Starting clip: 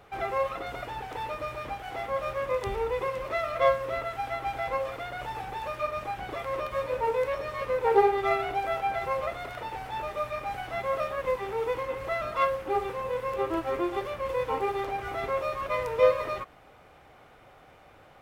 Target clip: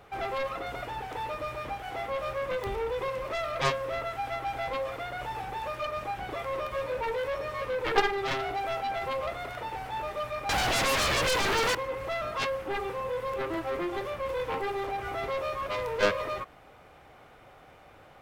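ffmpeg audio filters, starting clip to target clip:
-filter_complex "[0:a]aeval=exprs='0.316*(cos(1*acos(clip(val(0)/0.316,-1,1)))-cos(1*PI/2))+0.126*(cos(3*acos(clip(val(0)/0.316,-1,1)))-cos(3*PI/2))+0.0316*(cos(5*acos(clip(val(0)/0.316,-1,1)))-cos(5*PI/2))+0.0631*(cos(7*acos(clip(val(0)/0.316,-1,1)))-cos(7*PI/2))':c=same,asettb=1/sr,asplit=3[s0][s1][s2];[s0]atrim=end=10.494[s3];[s1]atrim=start=10.49:end=11.75,asetpts=PTS-STARTPTS,afade=t=in:d=0.004:c=qsin,afade=t=out:st=1.256:d=0.004:c=qsin,aeval=exprs='0.0668*sin(PI/2*5.01*val(0)/0.0668)':c=same[s4];[s2]atrim=start=11.746[s5];[s3][s4]acrossfade=d=0.004:c1=hsin:c2=qsin[s6];[s6][s5]acrossfade=d=0.004:c1=qsin:c2=hsin"

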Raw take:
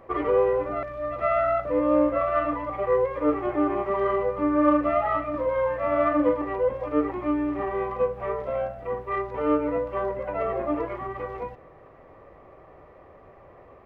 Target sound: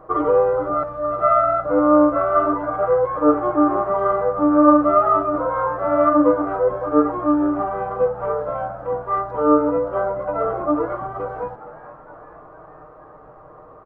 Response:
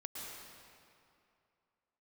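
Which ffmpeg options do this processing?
-filter_complex "[0:a]highshelf=f=1700:t=q:w=3:g=-8,aecho=1:1:6.5:0.65,asplit=6[s0][s1][s2][s3][s4][s5];[s1]adelay=466,afreqshift=93,volume=0.133[s6];[s2]adelay=932,afreqshift=186,volume=0.075[s7];[s3]adelay=1398,afreqshift=279,volume=0.0417[s8];[s4]adelay=1864,afreqshift=372,volume=0.0234[s9];[s5]adelay=2330,afreqshift=465,volume=0.0132[s10];[s0][s6][s7][s8][s9][s10]amix=inputs=6:normalize=0,volume=1.41"

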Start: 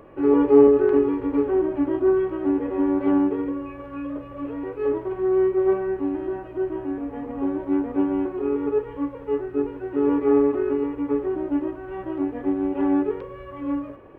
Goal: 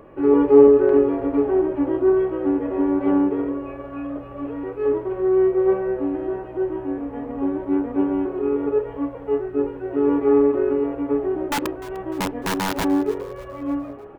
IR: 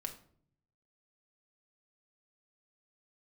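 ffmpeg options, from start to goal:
-filter_complex "[0:a]asplit=3[s0][s1][s2];[s0]afade=t=out:st=11.47:d=0.02[s3];[s1]aeval=exprs='(mod(8.91*val(0)+1,2)-1)/8.91':c=same,afade=t=in:st=11.47:d=0.02,afade=t=out:st=12.83:d=0.02[s4];[s2]afade=t=in:st=12.83:d=0.02[s5];[s3][s4][s5]amix=inputs=3:normalize=0,asplit=5[s6][s7][s8][s9][s10];[s7]adelay=300,afreqshift=130,volume=0.119[s11];[s8]adelay=600,afreqshift=260,volume=0.0569[s12];[s9]adelay=900,afreqshift=390,volume=0.0272[s13];[s10]adelay=1200,afreqshift=520,volume=0.0132[s14];[s6][s11][s12][s13][s14]amix=inputs=5:normalize=0,asplit=2[s15][s16];[1:a]atrim=start_sample=2205,lowpass=2100[s17];[s16][s17]afir=irnorm=-1:irlink=0,volume=0.282[s18];[s15][s18]amix=inputs=2:normalize=0"

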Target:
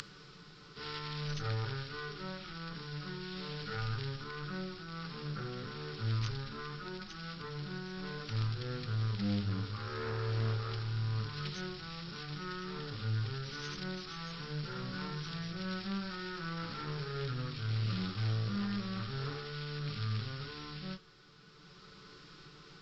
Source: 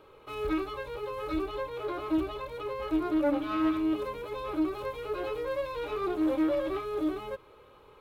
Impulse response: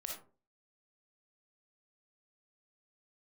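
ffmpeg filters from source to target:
-filter_complex "[0:a]acompressor=mode=upward:threshold=0.00794:ratio=2.5,aexciter=amount=9.1:drive=7.2:freq=3700,aeval=exprs='0.158*(cos(1*acos(clip(val(0)/0.158,-1,1)))-cos(1*PI/2))+0.00251*(cos(8*acos(clip(val(0)/0.158,-1,1)))-cos(8*PI/2))':c=same,asetrate=15479,aresample=44100,asplit=2[s0][s1];[1:a]atrim=start_sample=2205[s2];[s1][s2]afir=irnorm=-1:irlink=0,volume=0.126[s3];[s0][s3]amix=inputs=2:normalize=0,volume=0.398"

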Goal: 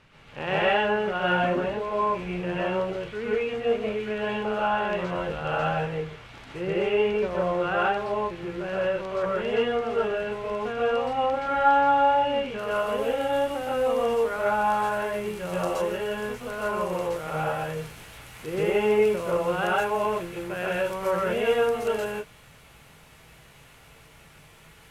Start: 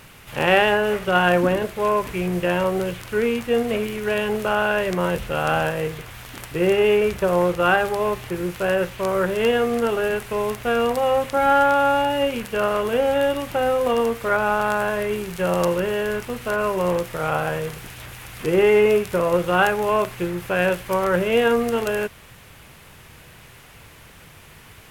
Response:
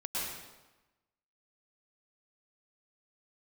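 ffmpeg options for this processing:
-filter_complex "[0:a]asetnsamples=n=441:p=0,asendcmd='12.59 lowpass f 12000',lowpass=4400[s0];[1:a]atrim=start_sample=2205,atrim=end_sample=6615,asetrate=37926,aresample=44100[s1];[s0][s1]afir=irnorm=-1:irlink=0,volume=0.376"

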